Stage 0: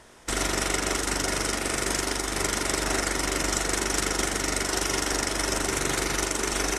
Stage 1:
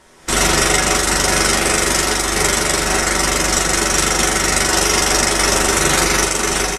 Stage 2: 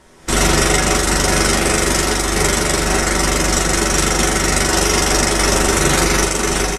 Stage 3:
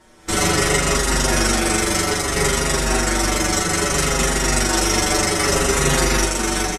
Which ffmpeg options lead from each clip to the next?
ffmpeg -i in.wav -filter_complex "[0:a]aecho=1:1:5.3:0.39,dynaudnorm=framelen=170:gausssize=3:maxgain=11.5dB,asplit=2[link_01][link_02];[link_02]aecho=0:1:12|40:0.708|0.501[link_03];[link_01][link_03]amix=inputs=2:normalize=0" out.wav
ffmpeg -i in.wav -af "lowshelf=frequency=420:gain=6.5,volume=-1.5dB" out.wav
ffmpeg -i in.wav -filter_complex "[0:a]asplit=2[link_01][link_02];[link_02]adelay=6.1,afreqshift=-0.62[link_03];[link_01][link_03]amix=inputs=2:normalize=1" out.wav

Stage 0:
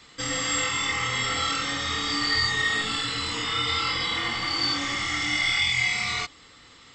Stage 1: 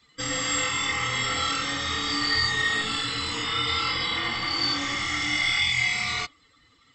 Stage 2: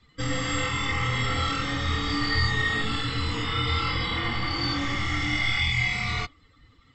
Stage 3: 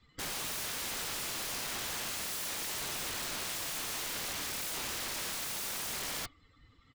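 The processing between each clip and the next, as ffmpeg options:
ffmpeg -i in.wav -af "afftdn=noise_reduction=14:noise_floor=-45" out.wav
ffmpeg -i in.wav -af "aemphasis=mode=reproduction:type=bsi" out.wav
ffmpeg -i in.wav -af "aresample=32000,aresample=44100,aeval=exprs='(mod(23.7*val(0)+1,2)-1)/23.7':channel_layout=same,volume=-5.5dB" out.wav

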